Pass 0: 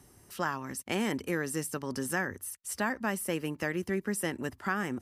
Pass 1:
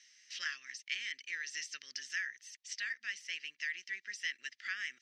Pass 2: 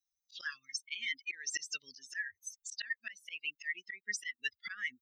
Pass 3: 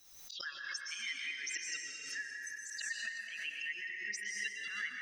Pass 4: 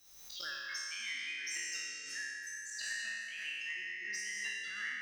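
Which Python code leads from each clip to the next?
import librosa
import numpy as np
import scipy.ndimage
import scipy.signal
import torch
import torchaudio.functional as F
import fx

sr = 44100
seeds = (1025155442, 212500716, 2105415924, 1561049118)

y1 = scipy.signal.sosfilt(scipy.signal.ellip(3, 1.0, 40, [1900.0, 6000.0], 'bandpass', fs=sr, output='sos'), x)
y1 = fx.rider(y1, sr, range_db=5, speed_s=0.5)
y1 = y1 * 10.0 ** (2.5 / 20.0)
y2 = fx.bin_expand(y1, sr, power=3.0)
y2 = fx.auto_swell(y2, sr, attack_ms=241.0)
y2 = y2 * 10.0 ** (17.5 / 20.0)
y3 = fx.rev_plate(y2, sr, seeds[0], rt60_s=2.9, hf_ratio=0.6, predelay_ms=105, drr_db=-1.5)
y3 = fx.pre_swell(y3, sr, db_per_s=50.0)
y3 = y3 * 10.0 ** (-4.5 / 20.0)
y4 = fx.spec_trails(y3, sr, decay_s=1.4)
y4 = 10.0 ** (-26.5 / 20.0) * np.tanh(y4 / 10.0 ** (-26.5 / 20.0))
y4 = y4 * 10.0 ** (-3.0 / 20.0)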